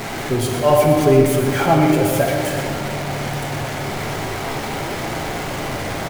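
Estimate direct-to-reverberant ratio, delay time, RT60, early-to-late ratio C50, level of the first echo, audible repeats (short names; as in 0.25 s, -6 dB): -0.5 dB, 0.12 s, 2.8 s, 2.0 dB, -8.5 dB, 1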